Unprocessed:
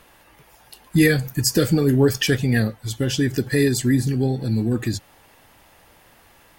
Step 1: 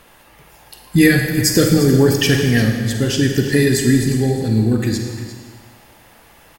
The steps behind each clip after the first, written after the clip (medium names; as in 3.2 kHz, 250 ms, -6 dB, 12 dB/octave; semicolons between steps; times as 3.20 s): delay 351 ms -13.5 dB; on a send at -3.5 dB: reverberation RT60 1.6 s, pre-delay 37 ms; on the sum: trim +3.5 dB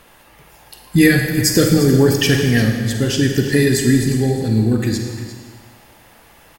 no audible change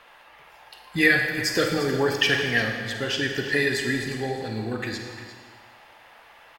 three-band isolator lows -17 dB, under 540 Hz, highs -17 dB, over 4.1 kHz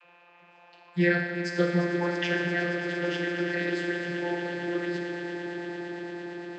echo with a slow build-up 114 ms, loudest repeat 8, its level -15 dB; whistle 2.6 kHz -50 dBFS; vocoder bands 32, saw 174 Hz; trim -4 dB